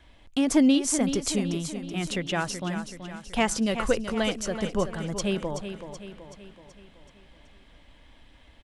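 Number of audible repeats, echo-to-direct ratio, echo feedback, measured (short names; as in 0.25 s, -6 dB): 5, -8.0 dB, 52%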